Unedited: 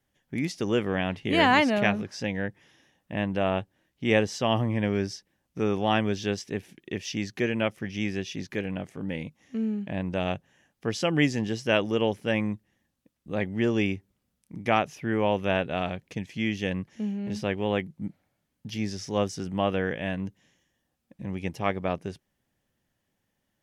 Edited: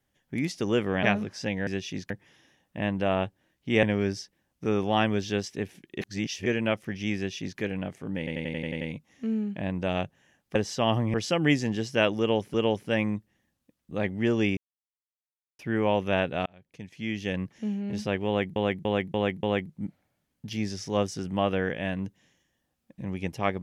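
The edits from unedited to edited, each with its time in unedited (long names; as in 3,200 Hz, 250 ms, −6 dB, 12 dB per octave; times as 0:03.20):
0:01.03–0:01.81: remove
0:04.18–0:04.77: move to 0:10.86
0:06.95–0:07.40: reverse
0:08.10–0:08.53: duplicate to 0:02.45
0:09.12: stutter 0.09 s, 8 plays
0:11.91–0:12.26: repeat, 2 plays
0:13.94–0:14.96: silence
0:15.83–0:16.81: fade in
0:17.64–0:17.93: repeat, 5 plays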